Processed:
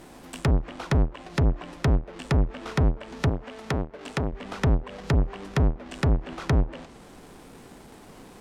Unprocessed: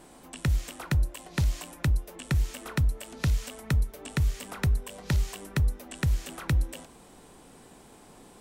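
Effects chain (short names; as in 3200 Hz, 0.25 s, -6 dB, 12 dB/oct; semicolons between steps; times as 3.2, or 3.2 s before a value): half-waves squared off; treble ducked by the level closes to 840 Hz, closed at -19.5 dBFS; 3.29–4.33 low shelf 140 Hz -11 dB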